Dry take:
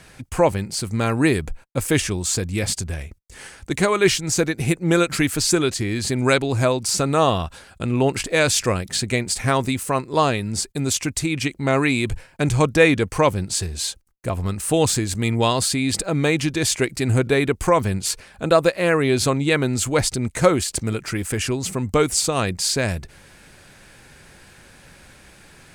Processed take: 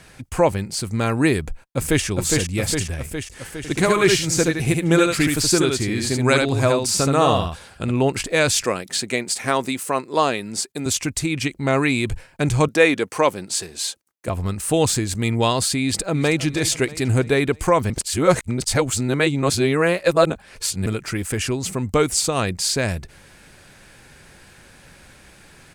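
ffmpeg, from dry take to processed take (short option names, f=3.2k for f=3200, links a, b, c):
-filter_complex "[0:a]asplit=2[a][b];[b]afade=t=in:st=1.4:d=0.01,afade=t=out:st=2.05:d=0.01,aecho=0:1:410|820|1230|1640|2050|2460|2870|3280|3690|4100|4510:0.749894|0.487431|0.31683|0.20594|0.133861|0.0870095|0.0565562|0.0367615|0.023895|0.0155317|0.0100956[c];[a][c]amix=inputs=2:normalize=0,asettb=1/sr,asplit=3[d][e][f];[d]atrim=end=3.574[g];[e]atrim=start=3.57:end=7.91,asetpts=PTS-STARTPTS,afade=t=in:d=0.004:c=qsin,afade=t=out:st=4.336:d=0.004:c=qsin,aecho=1:1:73:0.631,atrim=end_sample=191394[h];[f]atrim=start=7.906[i];[g][h]acrossfade=d=0.004:c1=hsin:c2=qsin[j];[j][i]acrossfade=d=0.004:c1=qsin:c2=hsin,asettb=1/sr,asplit=3[k][l][m];[k]atrim=end=8.644[n];[l]atrim=start=8.64:end=10.86,asetpts=PTS-STARTPTS,afade=t=in:d=0.004:c=qsin,afade=t=out:st=2.216:d=0.004:c=qsin,highpass=230[o];[m]atrim=start=10.856[p];[n][o]acrossfade=d=0.004:c1=hsin:c2=qsin[q];[q][p]acrossfade=d=0.004:c1=qsin:c2=hsin,asettb=1/sr,asplit=3[r][s][t];[r]atrim=end=12.684[u];[s]atrim=start=12.68:end=14.28,asetpts=PTS-STARTPTS,afade=t=in:d=0.004:c=qsin,afade=t=out:st=1.596:d=0.004:c=qsin,highpass=260[v];[t]atrim=start=14.276[w];[u][v]acrossfade=d=0.004:c1=hsin:c2=qsin[x];[x][w]acrossfade=d=0.004:c1=qsin:c2=hsin,asplit=2[y][z];[z]afade=t=in:st=15.82:d=0.01,afade=t=out:st=16.44:d=0.01,aecho=0:1:320|640|960|1280|1600:0.199526|0.0997631|0.0498816|0.0249408|0.0124704[aa];[y][aa]amix=inputs=2:normalize=0,asplit=3[ab][ac][ad];[ab]atrim=end=17.902[ae];[ac]atrim=start=17.898:end=20.862,asetpts=PTS-STARTPTS,areverse[af];[ad]atrim=start=20.858[ag];[ae][af]acrossfade=d=0.004:c1=hsin:c2=hsin[ah];[ah][ag]acrossfade=d=0.004:c1=hsin:c2=hsin"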